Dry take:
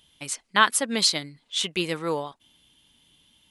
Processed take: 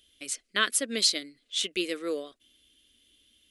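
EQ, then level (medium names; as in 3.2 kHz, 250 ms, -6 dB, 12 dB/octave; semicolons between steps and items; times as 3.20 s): static phaser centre 370 Hz, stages 4; -2.0 dB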